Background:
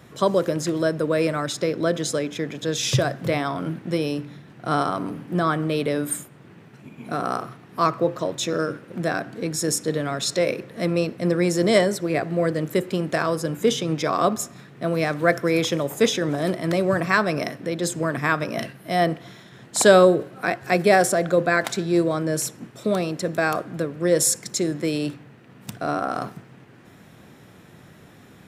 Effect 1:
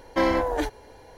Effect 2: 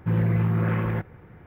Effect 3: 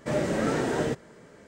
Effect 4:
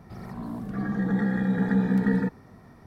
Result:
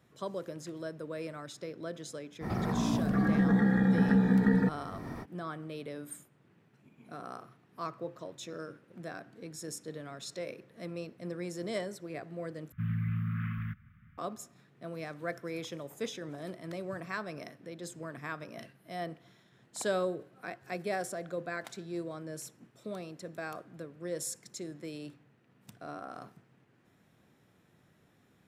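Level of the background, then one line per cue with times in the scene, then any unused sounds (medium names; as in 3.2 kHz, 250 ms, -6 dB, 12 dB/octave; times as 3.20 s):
background -18 dB
2.40 s: add 4 -1 dB, fades 0.05 s + three bands compressed up and down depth 70%
12.72 s: replace with 2 -10 dB + Chebyshev band-stop 240–1200 Hz, order 4
not used: 1, 3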